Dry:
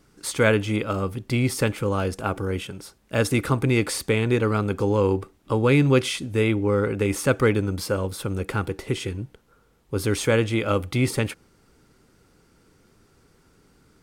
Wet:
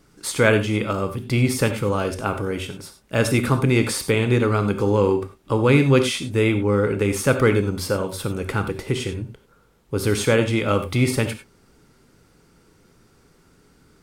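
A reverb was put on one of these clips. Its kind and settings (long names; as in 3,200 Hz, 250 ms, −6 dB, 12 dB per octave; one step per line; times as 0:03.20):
reverb whose tail is shaped and stops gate 120 ms flat, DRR 7.5 dB
level +2 dB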